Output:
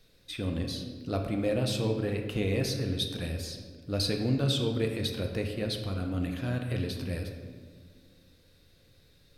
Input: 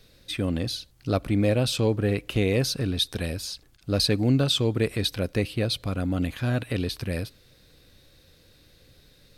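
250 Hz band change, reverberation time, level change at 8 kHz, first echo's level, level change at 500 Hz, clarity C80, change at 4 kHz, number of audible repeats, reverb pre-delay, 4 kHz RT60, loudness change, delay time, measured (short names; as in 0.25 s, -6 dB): -5.5 dB, 1.7 s, -6.5 dB, none, -5.0 dB, 7.5 dB, -6.5 dB, none, 4 ms, 0.95 s, -5.5 dB, none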